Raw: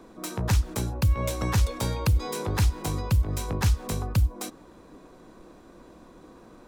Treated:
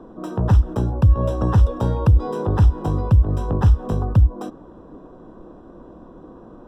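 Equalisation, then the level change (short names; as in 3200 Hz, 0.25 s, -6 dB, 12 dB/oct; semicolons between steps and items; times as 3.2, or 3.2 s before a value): running mean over 20 samples; +8.5 dB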